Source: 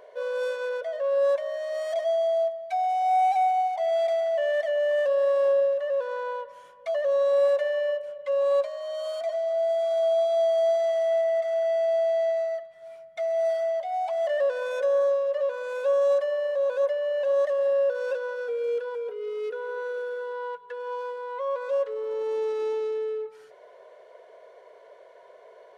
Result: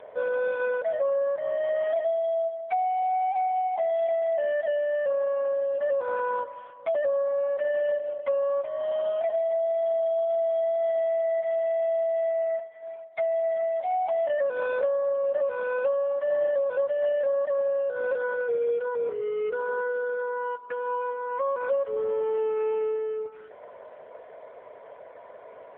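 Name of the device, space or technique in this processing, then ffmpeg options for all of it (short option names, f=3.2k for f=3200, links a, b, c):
voicemail: -af "highpass=430,lowpass=2.6k,acompressor=threshold=-29dB:ratio=10,volume=7dB" -ar 8000 -c:a libopencore_amrnb -b:a 7950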